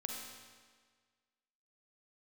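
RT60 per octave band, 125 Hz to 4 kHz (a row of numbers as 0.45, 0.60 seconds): 1.6, 1.6, 1.6, 1.6, 1.6, 1.5 seconds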